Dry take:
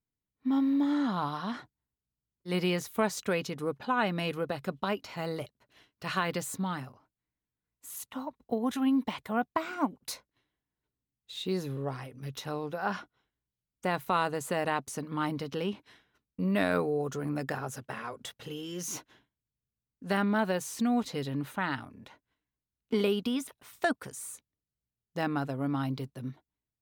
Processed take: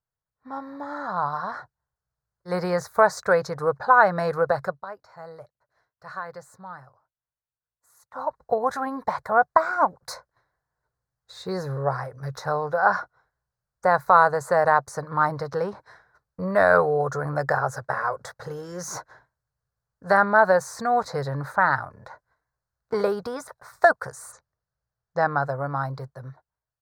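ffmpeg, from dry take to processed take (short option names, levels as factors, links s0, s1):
-filter_complex "[0:a]asplit=3[s0][s1][s2];[s0]afade=t=out:st=24.31:d=0.02[s3];[s1]lowpass=f=6800:w=0.5412,lowpass=f=6800:w=1.3066,afade=t=in:st=24.31:d=0.02,afade=t=out:st=25.41:d=0.02[s4];[s2]afade=t=in:st=25.41:d=0.02[s5];[s3][s4][s5]amix=inputs=3:normalize=0,asplit=3[s6][s7][s8];[s6]atrim=end=4.77,asetpts=PTS-STARTPTS,afade=t=out:st=4.64:d=0.13:silence=0.149624[s9];[s7]atrim=start=4.77:end=8.11,asetpts=PTS-STARTPTS,volume=0.15[s10];[s8]atrim=start=8.11,asetpts=PTS-STARTPTS,afade=t=in:d=0.13:silence=0.149624[s11];[s9][s10][s11]concat=n=3:v=0:a=1,firequalizer=gain_entry='entry(150,0);entry(240,-17);entry(520,6);entry(1600,7);entry(2900,-28);entry(4200,-3);entry(13000,-12)':delay=0.05:min_phase=1,dynaudnorm=f=440:g=9:m=2.66"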